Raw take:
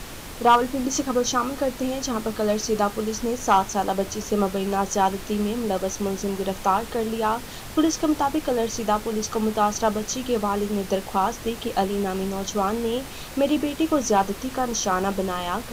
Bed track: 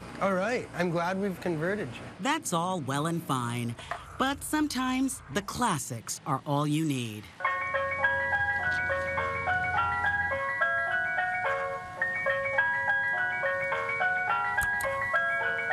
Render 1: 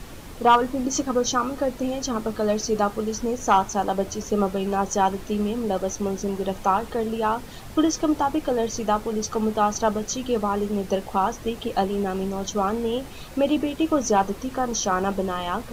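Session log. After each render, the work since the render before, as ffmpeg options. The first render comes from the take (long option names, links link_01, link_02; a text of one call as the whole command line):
ffmpeg -i in.wav -af "afftdn=noise_reduction=7:noise_floor=-37" out.wav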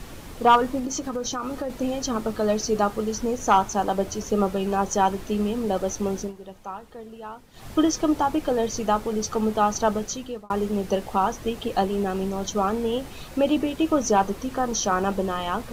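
ffmpeg -i in.wav -filter_complex "[0:a]asettb=1/sr,asplit=3[link_01][link_02][link_03];[link_01]atrim=end=0.794[link_04];[link_02]atrim=start=0.79:end=1.7,asetpts=PTS-STARTPTS,afade=type=in:duration=0.004:curve=qsin,afade=type=out:start_time=0.906:duration=0.004:curve=qsin,acompressor=threshold=-25dB:ratio=5:attack=3.2:release=140:knee=1:detection=peak[link_05];[link_03]atrim=start=1.696[link_06];[link_04][link_05]acrossfade=duration=0.004:curve1=hsin:curve2=qsin[link_07];[link_07][link_06]acrossfade=duration=0.004:curve1=qsin:curve2=hsin,asplit=4[link_08][link_09][link_10][link_11];[link_08]atrim=end=6.33,asetpts=PTS-STARTPTS,afade=type=out:start_time=6.2:duration=0.13:silence=0.188365[link_12];[link_09]atrim=start=6.33:end=7.53,asetpts=PTS-STARTPTS,volume=-14.5dB[link_13];[link_10]atrim=start=7.53:end=10.5,asetpts=PTS-STARTPTS,afade=type=in:duration=0.13:silence=0.188365,afade=type=out:start_time=2.45:duration=0.52[link_14];[link_11]atrim=start=10.5,asetpts=PTS-STARTPTS,afade=type=in:duration=0.004:curve=hsin[link_15];[link_12][link_13][link_14][link_15]concat=n=4:v=0:a=1" out.wav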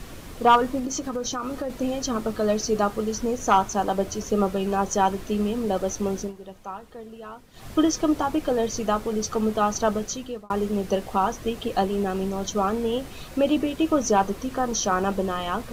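ffmpeg -i in.wav -af "bandreject=frequency=860:width=14" out.wav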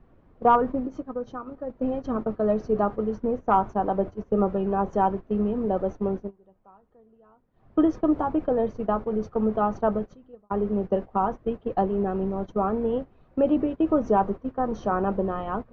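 ffmpeg -i in.wav -af "agate=range=-16dB:threshold=-28dB:ratio=16:detection=peak,lowpass=1100" out.wav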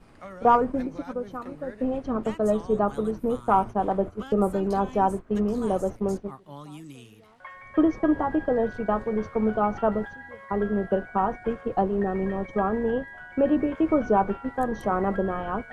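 ffmpeg -i in.wav -i bed.wav -filter_complex "[1:a]volume=-14.5dB[link_01];[0:a][link_01]amix=inputs=2:normalize=0" out.wav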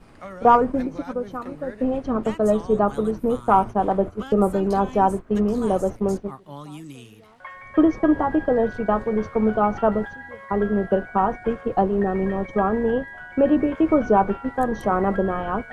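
ffmpeg -i in.wav -af "volume=4dB" out.wav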